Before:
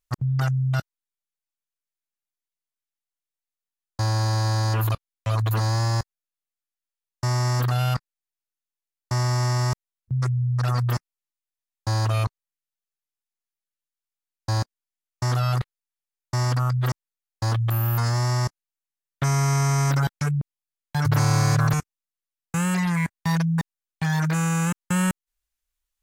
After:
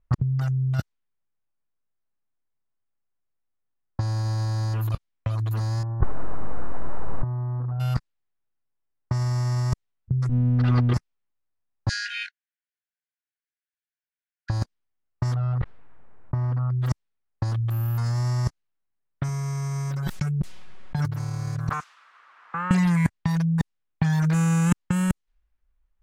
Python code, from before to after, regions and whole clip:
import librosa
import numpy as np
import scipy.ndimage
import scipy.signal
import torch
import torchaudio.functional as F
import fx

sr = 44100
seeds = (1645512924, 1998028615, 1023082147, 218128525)

y = fx.chain(x, sr, fx.zero_step(step_db=-28.5),
    fx.lowpass(hz=1200.0, slope=24),
    fx.env_flatten(amount_pct=50), at=(5.83, 7.8))
y = fx.chain(y, sr, fx.lower_of_two(delay_ms=2.5),
    fx.lowpass(hz=3700.0, slope=24),
    fx.leveller(passes=1), at=(10.29, 10.94))
y = fx.chain(y, sr, fx.brickwall_bandpass(low_hz=1400.0, high_hz=11000.0),
    fx.doubler(ms=23.0, db=-3.5), at=(11.89, 14.5))
y = fx.chain(y, sr, fx.lowpass(hz=1400.0, slope=12),
    fx.env_flatten(amount_pct=50), at=(15.34, 16.82))
y = fx.chain(y, sr, fx.comb(ms=5.4, depth=0.48),
    fx.pre_swell(db_per_s=46.0), at=(19.28, 20.99))
y = fx.chain(y, sr, fx.crossing_spikes(level_db=-23.5),
    fx.bandpass_q(hz=1200.0, q=2.9),
    fx.band_squash(depth_pct=40), at=(21.69, 22.71))
y = fx.env_lowpass(y, sr, base_hz=1500.0, full_db=-19.0)
y = fx.low_shelf(y, sr, hz=200.0, db=10.5)
y = fx.over_compress(y, sr, threshold_db=-20.0, ratio=-0.5)